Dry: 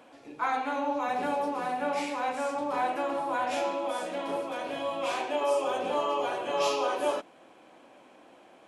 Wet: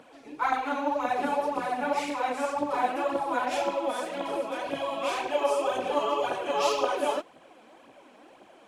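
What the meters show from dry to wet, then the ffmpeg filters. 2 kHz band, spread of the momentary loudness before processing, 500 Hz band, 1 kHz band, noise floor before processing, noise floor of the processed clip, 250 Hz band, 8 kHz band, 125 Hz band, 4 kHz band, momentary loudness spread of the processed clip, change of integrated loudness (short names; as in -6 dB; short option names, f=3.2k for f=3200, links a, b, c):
+1.5 dB, 5 LU, +1.5 dB, +1.5 dB, -56 dBFS, -55 dBFS, +1.5 dB, +1.5 dB, +0.5 dB, +1.5 dB, 5 LU, +1.5 dB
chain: -af "aphaser=in_gain=1:out_gain=1:delay=4.9:decay=0.57:speed=1.9:type=triangular"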